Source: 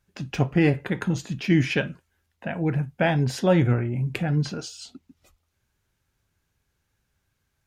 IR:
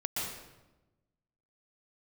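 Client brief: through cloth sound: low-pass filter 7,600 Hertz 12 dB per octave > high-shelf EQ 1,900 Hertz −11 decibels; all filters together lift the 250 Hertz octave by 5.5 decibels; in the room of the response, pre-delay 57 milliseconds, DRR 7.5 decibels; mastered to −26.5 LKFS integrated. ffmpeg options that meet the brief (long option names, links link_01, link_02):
-filter_complex "[0:a]equalizer=frequency=250:width_type=o:gain=9,asplit=2[link_01][link_02];[1:a]atrim=start_sample=2205,adelay=57[link_03];[link_02][link_03]afir=irnorm=-1:irlink=0,volume=-12.5dB[link_04];[link_01][link_04]amix=inputs=2:normalize=0,lowpass=7600,highshelf=frequency=1900:gain=-11,volume=-6.5dB"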